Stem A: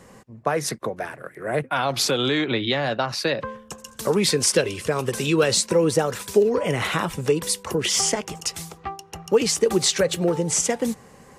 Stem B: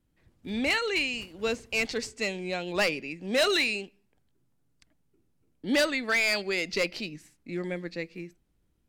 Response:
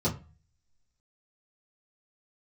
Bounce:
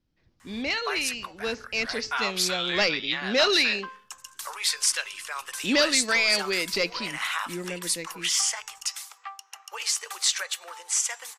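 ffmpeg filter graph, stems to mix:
-filter_complex "[0:a]highpass=f=1k:w=0.5412,highpass=f=1k:w=1.3066,adelay=400,volume=-2.5dB[a];[1:a]highshelf=f=7.1k:t=q:w=3:g=-11,dynaudnorm=f=340:g=13:m=4.5dB,volume=-3dB[b];[a][b]amix=inputs=2:normalize=0,bandreject=f=436:t=h:w=4,bandreject=f=872:t=h:w=4,bandreject=f=1.308k:t=h:w=4,bandreject=f=1.744k:t=h:w=4,bandreject=f=2.18k:t=h:w=4,bandreject=f=2.616k:t=h:w=4,bandreject=f=3.052k:t=h:w=4,bandreject=f=3.488k:t=h:w=4,bandreject=f=3.924k:t=h:w=4,bandreject=f=4.36k:t=h:w=4,bandreject=f=4.796k:t=h:w=4,bandreject=f=5.232k:t=h:w=4,bandreject=f=5.668k:t=h:w=4,bandreject=f=6.104k:t=h:w=4,bandreject=f=6.54k:t=h:w=4,bandreject=f=6.976k:t=h:w=4,bandreject=f=7.412k:t=h:w=4,bandreject=f=7.848k:t=h:w=4"

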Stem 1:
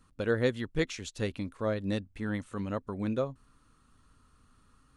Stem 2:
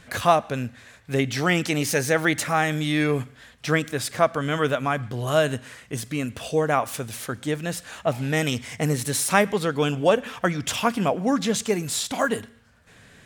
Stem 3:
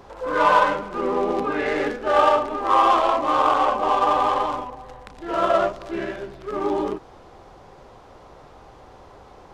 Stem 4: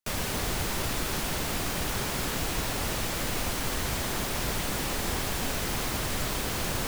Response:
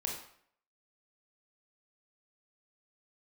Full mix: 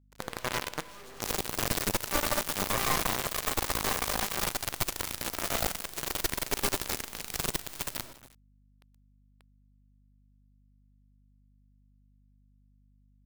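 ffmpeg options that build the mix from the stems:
-filter_complex "[0:a]acrossover=split=180|380[a][b][c];[a]acompressor=threshold=-44dB:ratio=4[d];[b]acompressor=threshold=-41dB:ratio=4[e];[c]acompressor=threshold=-42dB:ratio=4[f];[d][e][f]amix=inputs=3:normalize=0,volume=-7.5dB,asplit=2[g][h];[h]volume=-6.5dB[i];[1:a]acrossover=split=180[j][k];[k]acompressor=threshold=-24dB:ratio=2[l];[j][l]amix=inputs=2:normalize=0,highpass=43,equalizer=f=950:t=o:w=0.36:g=12.5,volume=-19dB[m];[2:a]asplit=2[n][o];[o]adelay=6.9,afreqshift=-1.1[p];[n][p]amix=inputs=2:normalize=1,volume=-16.5dB,asplit=3[q][r][s];[r]volume=-9dB[t];[s]volume=-9.5dB[u];[3:a]highshelf=f=4.2k:g=2,asplit=2[v][w];[w]adelay=2,afreqshift=-0.67[x];[v][x]amix=inputs=2:normalize=1,adelay=1150,volume=-2.5dB,asplit=3[y][z][aa];[z]volume=-6.5dB[ab];[aa]volume=-17.5dB[ac];[g][q]amix=inputs=2:normalize=0,acompressor=threshold=-41dB:ratio=5,volume=0dB[ad];[m][y]amix=inputs=2:normalize=0,asoftclip=type=hard:threshold=-38dB,alimiter=level_in=25dB:limit=-24dB:level=0:latency=1,volume=-25dB,volume=0dB[ae];[4:a]atrim=start_sample=2205[af];[i][t][ab]amix=inputs=3:normalize=0[ag];[ag][af]afir=irnorm=-1:irlink=0[ah];[u][ac]amix=inputs=2:normalize=0,aecho=0:1:324:1[ai];[ad][ae][ah][ai]amix=inputs=4:normalize=0,aeval=exprs='0.0794*(cos(1*acos(clip(val(0)/0.0794,-1,1)))-cos(1*PI/2))+0.0355*(cos(4*acos(clip(val(0)/0.0794,-1,1)))-cos(4*PI/2))':c=same,acrusher=bits=5:dc=4:mix=0:aa=0.000001,aeval=exprs='val(0)+0.000794*(sin(2*PI*50*n/s)+sin(2*PI*2*50*n/s)/2+sin(2*PI*3*50*n/s)/3+sin(2*PI*4*50*n/s)/4+sin(2*PI*5*50*n/s)/5)':c=same"

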